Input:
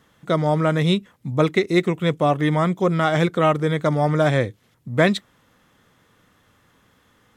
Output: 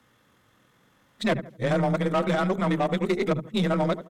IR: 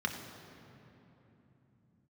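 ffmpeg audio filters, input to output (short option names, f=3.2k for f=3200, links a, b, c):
-filter_complex "[0:a]areverse,afreqshift=16,bandreject=f=50:t=h:w=6,bandreject=f=100:t=h:w=6,bandreject=f=150:t=h:w=6,bandreject=f=200:t=h:w=6,bandreject=f=250:t=h:w=6,bandreject=f=300:t=h:w=6,bandreject=f=350:t=h:w=6,bandreject=f=400:t=h:w=6,bandreject=f=450:t=h:w=6,asplit=2[a][b];[b]adelay=147,lowpass=f=1.7k:p=1,volume=-14.5dB,asplit=2[c][d];[d]adelay=147,lowpass=f=1.7k:p=1,volume=0.33,asplit=2[e][f];[f]adelay=147,lowpass=f=1.7k:p=1,volume=0.33[g];[a][c][e][g]amix=inputs=4:normalize=0,acrossover=split=100[h][i];[i]asoftclip=type=tanh:threshold=-14dB[j];[h][j]amix=inputs=2:normalize=0,atempo=1.8,aeval=exprs='0.211*(cos(1*acos(clip(val(0)/0.211,-1,1)))-cos(1*PI/2))+0.0075*(cos(6*acos(clip(val(0)/0.211,-1,1)))-cos(6*PI/2))':c=same,volume=-2.5dB"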